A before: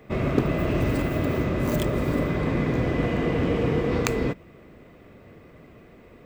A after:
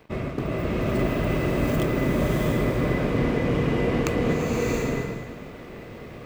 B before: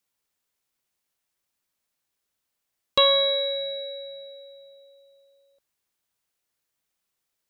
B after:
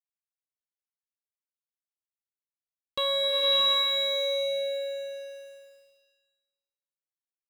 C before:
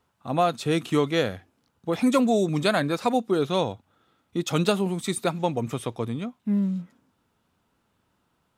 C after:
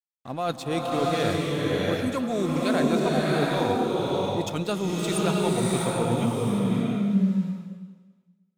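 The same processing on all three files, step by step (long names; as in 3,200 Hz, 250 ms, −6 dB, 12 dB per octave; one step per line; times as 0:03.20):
reversed playback
downward compressor 12 to 1, threshold −31 dBFS
reversed playback
dead-zone distortion −55.5 dBFS
slow-attack reverb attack 690 ms, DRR −4 dB
level +7 dB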